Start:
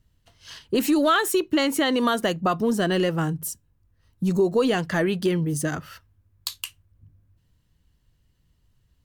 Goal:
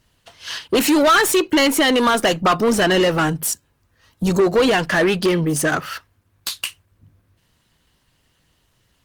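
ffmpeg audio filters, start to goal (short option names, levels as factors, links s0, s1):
-filter_complex "[0:a]asplit=2[s0][s1];[s1]highpass=f=720:p=1,volume=10,asoftclip=type=tanh:threshold=0.299[s2];[s0][s2]amix=inputs=2:normalize=0,lowpass=f=6500:p=1,volume=0.501,volume=1.33" -ar 48000 -c:a libopus -b:a 20k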